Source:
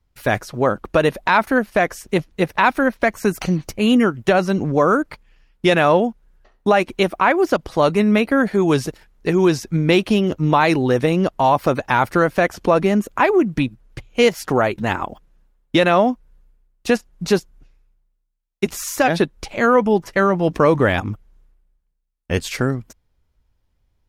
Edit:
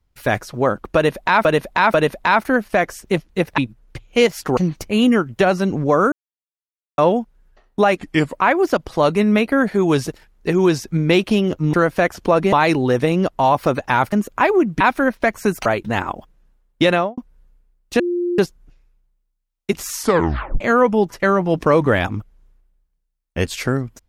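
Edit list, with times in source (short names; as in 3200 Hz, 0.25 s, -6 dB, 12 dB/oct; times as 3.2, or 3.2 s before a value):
0.96–1.45 loop, 3 plays
2.6–3.45 swap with 13.6–14.59
5–5.86 mute
6.85–7.19 speed 80%
12.13–12.92 move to 10.53
15.85–16.11 studio fade out
16.93–17.32 bleep 351 Hz -17.5 dBFS
18.87 tape stop 0.67 s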